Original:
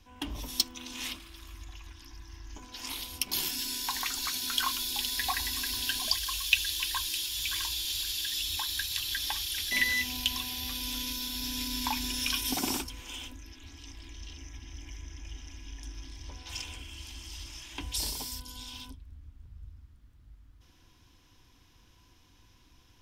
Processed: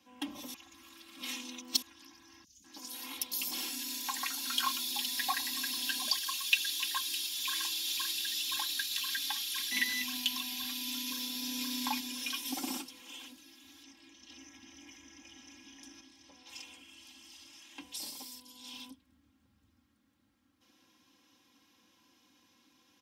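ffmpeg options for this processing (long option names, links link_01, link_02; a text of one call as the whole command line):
ffmpeg -i in.wav -filter_complex "[0:a]asettb=1/sr,asplit=3[link_01][link_02][link_03];[link_01]atrim=end=2.444[link_04];[link_02]atrim=start=2.44:end=4.47,asetpts=PTS-STARTPTS,afade=type=in:duration=0.004:curve=qsin,afade=type=out:start_time=2.026:duration=0.004:curve=qsin,acrossover=split=160|4200[link_05][link_06][link_07];[link_05]adelay=40[link_08];[link_06]adelay=200[link_09];[link_08][link_09][link_07]amix=inputs=3:normalize=0,atrim=end_sample=89523[link_10];[link_03]atrim=start=4.466[link_11];[link_04][link_10]acrossfade=duration=0.004:curve1=hsin:curve2=qsin[link_12];[link_12][link_11]acrossfade=duration=0.004:curve1=qsin:curve2=hsin,asplit=2[link_13][link_14];[link_14]afade=type=in:start_time=6.95:duration=0.01,afade=type=out:start_time=7.59:duration=0.01,aecho=0:1:520|1040|1560|2080|2600|3120|3640|4160|4680|5200|5720|6240:0.530884|0.451252|0.383564|0.326029|0.277125|0.235556|0.200223|0.170189|0.144661|0.122962|0.104518|0.0888399[link_15];[link_13][link_15]amix=inputs=2:normalize=0,asettb=1/sr,asplit=3[link_16][link_17][link_18];[link_16]atrim=end=8.804[link_19];[link_17]atrim=start=8.8:end=11.11,asetpts=PTS-STARTPTS,afade=type=in:duration=0.004:curve=qsin,afade=type=out:start_time=2.306:duration=0.004:curve=qsin,equalizer=frequency=560:width_type=o:width=0.51:gain=-14[link_20];[link_18]atrim=start=11.106[link_21];[link_19][link_20]acrossfade=duration=0.004:curve1=hsin:curve2=qsin[link_22];[link_22][link_21]acrossfade=duration=0.004:curve1=qsin:curve2=hsin,asettb=1/sr,asplit=3[link_23][link_24][link_25];[link_23]atrim=end=12.004[link_26];[link_24]atrim=start=12:end=14.3,asetpts=PTS-STARTPTS,afade=type=in:duration=0.004:curve=qsin,afade=type=out:start_time=2.296:duration=0.004:curve=qsin,flanger=delay=2.2:depth=4.4:regen=-47:speed=1.7:shape=sinusoidal[link_27];[link_25]atrim=start=14.296[link_28];[link_26][link_27]acrossfade=duration=0.004:curve1=hsin:curve2=qsin[link_29];[link_29][link_28]acrossfade=duration=0.004:curve1=qsin:curve2=hsin,asplit=5[link_30][link_31][link_32][link_33][link_34];[link_30]atrim=end=0.542[link_35];[link_31]atrim=start=0.538:end=1.822,asetpts=PTS-STARTPTS,areverse[link_36];[link_32]atrim=start=1.818:end=16.012[link_37];[link_33]atrim=start=16.008:end=18.642,asetpts=PTS-STARTPTS,volume=-5.5dB[link_38];[link_34]atrim=start=18.638[link_39];[link_35][link_36]acrossfade=duration=0.004:curve1=hsin:curve2=hsin[link_40];[link_40][link_37]acrossfade=duration=0.004:curve1=hsin:curve2=hsin[link_41];[link_41][link_38]acrossfade=duration=0.004:curve1=hsin:curve2=hsin[link_42];[link_42][link_39]acrossfade=duration=0.004:curve1=hsin:curve2=hsin,highpass=frequency=140:width=0.5412,highpass=frequency=140:width=1.3066,aecho=1:1:3.7:0.81,volume=-5dB" out.wav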